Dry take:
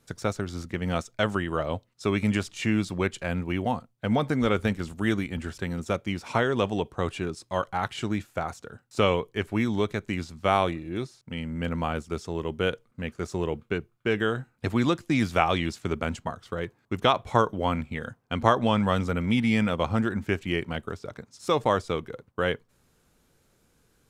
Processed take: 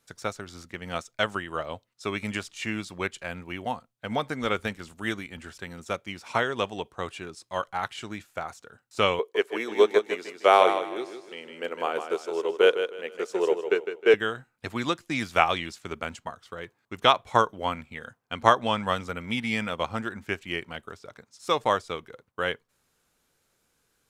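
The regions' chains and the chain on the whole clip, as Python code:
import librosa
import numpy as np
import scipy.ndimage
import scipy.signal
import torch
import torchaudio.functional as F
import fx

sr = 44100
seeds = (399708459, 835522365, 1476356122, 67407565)

y = fx.chain(x, sr, fx.highpass_res(hz=420.0, q=3.3),
    fx.echo_feedback(ms=156, feedback_pct=39, wet_db=-6.0), at=(9.19, 14.14))
y = fx.low_shelf(y, sr, hz=460.0, db=-11.0)
y = fx.upward_expand(y, sr, threshold_db=-35.0, expansion=1.5)
y = y * librosa.db_to_amplitude(6.0)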